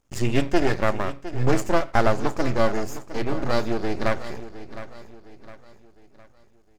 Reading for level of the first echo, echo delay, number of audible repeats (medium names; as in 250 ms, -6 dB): -14.0 dB, 710 ms, 3